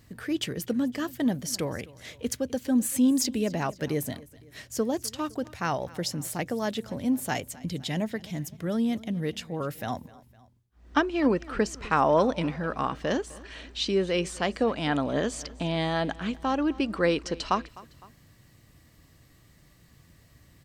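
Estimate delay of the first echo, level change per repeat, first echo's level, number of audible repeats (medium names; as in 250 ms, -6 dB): 255 ms, -5.5 dB, -21.0 dB, 2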